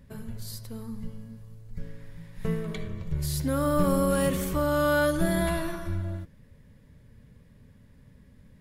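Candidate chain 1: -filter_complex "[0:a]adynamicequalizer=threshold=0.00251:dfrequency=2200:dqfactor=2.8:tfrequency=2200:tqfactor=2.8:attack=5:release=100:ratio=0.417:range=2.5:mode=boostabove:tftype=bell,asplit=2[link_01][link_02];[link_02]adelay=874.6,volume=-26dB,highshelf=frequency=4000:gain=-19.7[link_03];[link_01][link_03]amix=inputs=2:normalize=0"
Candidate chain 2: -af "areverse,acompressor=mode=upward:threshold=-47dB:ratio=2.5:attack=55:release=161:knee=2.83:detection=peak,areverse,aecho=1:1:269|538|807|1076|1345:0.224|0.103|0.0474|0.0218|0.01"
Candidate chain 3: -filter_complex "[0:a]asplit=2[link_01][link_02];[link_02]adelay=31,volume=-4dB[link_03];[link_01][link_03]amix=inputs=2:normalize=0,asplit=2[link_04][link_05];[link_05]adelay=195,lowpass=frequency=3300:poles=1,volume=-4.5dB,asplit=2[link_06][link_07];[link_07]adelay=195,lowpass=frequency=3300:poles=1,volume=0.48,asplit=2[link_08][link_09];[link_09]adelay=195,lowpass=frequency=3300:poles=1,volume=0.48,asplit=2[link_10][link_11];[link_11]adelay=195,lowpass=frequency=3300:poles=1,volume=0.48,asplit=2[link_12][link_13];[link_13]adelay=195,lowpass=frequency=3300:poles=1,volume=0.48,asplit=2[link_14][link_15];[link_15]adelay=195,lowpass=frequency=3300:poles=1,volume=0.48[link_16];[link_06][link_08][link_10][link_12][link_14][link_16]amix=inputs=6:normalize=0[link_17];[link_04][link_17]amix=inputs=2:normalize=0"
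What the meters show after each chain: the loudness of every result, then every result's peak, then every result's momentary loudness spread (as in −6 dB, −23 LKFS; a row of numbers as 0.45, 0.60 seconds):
−28.0, −28.0, −26.0 LKFS; −12.5, −11.5, −9.5 dBFS; 21, 21, 20 LU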